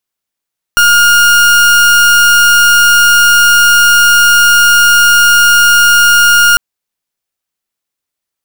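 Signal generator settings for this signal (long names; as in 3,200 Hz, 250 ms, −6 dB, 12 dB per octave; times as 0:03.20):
pulse wave 1,420 Hz, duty 38% −6 dBFS 5.80 s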